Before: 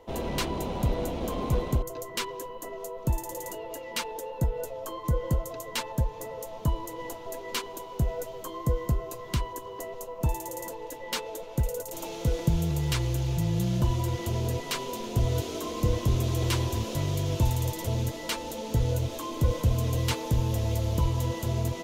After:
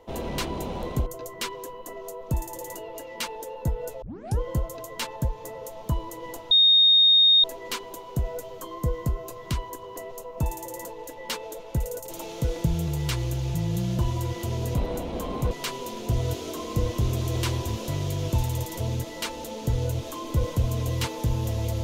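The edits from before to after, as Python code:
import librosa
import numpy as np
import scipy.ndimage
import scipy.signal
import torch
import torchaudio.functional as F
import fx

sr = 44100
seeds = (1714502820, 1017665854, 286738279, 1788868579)

y = fx.edit(x, sr, fx.move(start_s=0.83, length_s=0.76, to_s=14.58),
    fx.tape_start(start_s=4.78, length_s=0.38),
    fx.insert_tone(at_s=7.27, length_s=0.93, hz=3700.0, db=-13.5), tone=tone)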